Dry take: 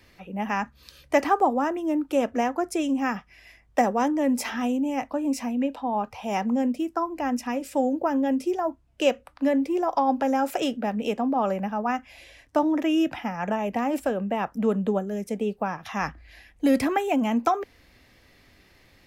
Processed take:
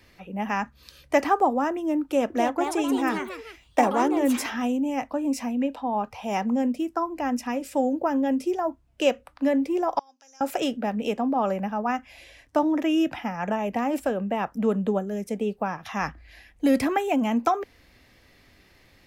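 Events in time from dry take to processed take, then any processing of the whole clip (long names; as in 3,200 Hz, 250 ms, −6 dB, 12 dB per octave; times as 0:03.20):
0:02.02–0:04.59: delay with pitch and tempo change per echo 281 ms, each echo +3 semitones, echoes 3, each echo −6 dB
0:09.99–0:10.41: resonant band-pass 5,900 Hz, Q 5.2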